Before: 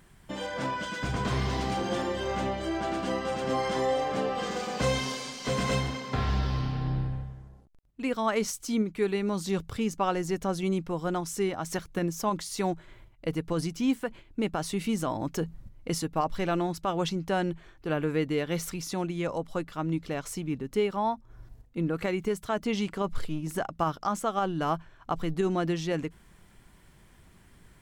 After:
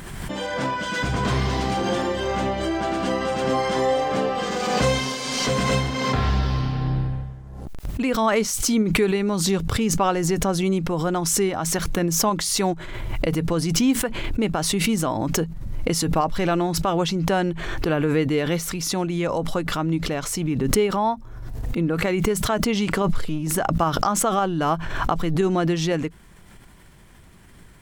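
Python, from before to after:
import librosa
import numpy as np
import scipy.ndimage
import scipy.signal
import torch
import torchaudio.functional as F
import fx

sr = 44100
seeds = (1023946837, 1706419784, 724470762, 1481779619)

y = fx.pre_swell(x, sr, db_per_s=31.0)
y = F.gain(torch.from_numpy(y), 6.0).numpy()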